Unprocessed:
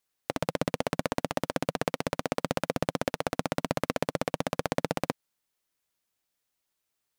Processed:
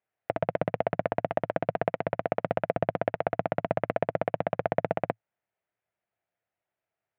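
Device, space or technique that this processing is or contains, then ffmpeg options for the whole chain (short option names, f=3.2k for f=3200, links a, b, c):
bass cabinet: -af "highpass=74,equalizer=f=110:t=q:w=4:g=5,equalizer=f=260:t=q:w=4:g=-8,equalizer=f=670:t=q:w=4:g=9,equalizer=f=1.1k:t=q:w=4:g=-5,lowpass=f=2.3k:w=0.5412,lowpass=f=2.3k:w=1.3066"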